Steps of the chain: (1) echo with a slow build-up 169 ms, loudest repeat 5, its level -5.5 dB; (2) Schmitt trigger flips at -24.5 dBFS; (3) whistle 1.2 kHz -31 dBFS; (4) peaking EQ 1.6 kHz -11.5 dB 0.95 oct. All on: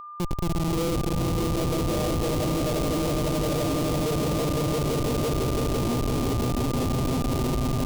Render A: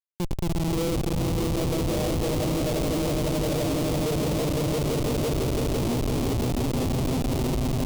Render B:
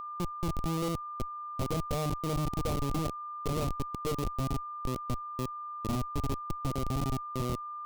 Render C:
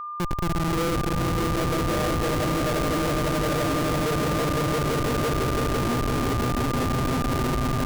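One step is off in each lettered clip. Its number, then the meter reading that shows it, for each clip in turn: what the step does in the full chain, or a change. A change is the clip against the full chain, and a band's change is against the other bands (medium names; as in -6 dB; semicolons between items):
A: 3, 1 kHz band -3.0 dB; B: 1, momentary loudness spread change +4 LU; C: 4, 2 kHz band +7.5 dB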